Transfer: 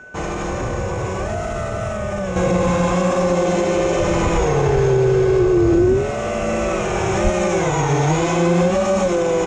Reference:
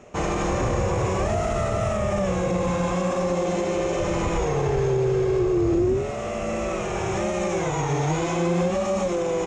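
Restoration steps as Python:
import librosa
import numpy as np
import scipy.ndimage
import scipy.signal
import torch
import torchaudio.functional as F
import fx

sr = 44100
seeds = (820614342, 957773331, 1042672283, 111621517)

y = fx.notch(x, sr, hz=1500.0, q=30.0)
y = fx.fix_deplosive(y, sr, at_s=(7.23,))
y = fx.fix_level(y, sr, at_s=2.36, step_db=-6.5)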